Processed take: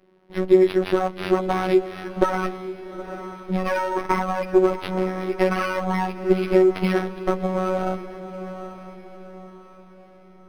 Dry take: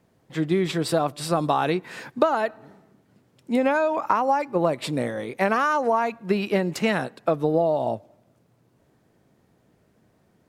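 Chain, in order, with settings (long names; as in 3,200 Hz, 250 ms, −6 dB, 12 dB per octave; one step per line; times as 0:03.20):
lower of the sound and its delayed copy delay 8.4 ms
parametric band 360 Hz +10.5 dB 0.49 octaves
in parallel at −0.5 dB: downward compressor, threshold −25 dBFS, peak gain reduction 15 dB
on the sum: phases set to zero 186 Hz
on a send: feedback delay with all-pass diffusion 864 ms, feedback 42%, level −11.5 dB
on the sum: linearly interpolated sample-rate reduction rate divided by 6×
level −1.5 dB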